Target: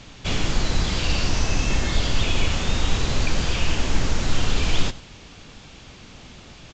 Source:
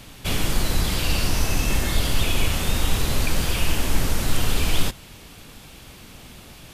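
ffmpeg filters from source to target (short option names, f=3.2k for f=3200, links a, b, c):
-af "aecho=1:1:94:0.126" -ar 16000 -c:a libvorbis -b:a 96k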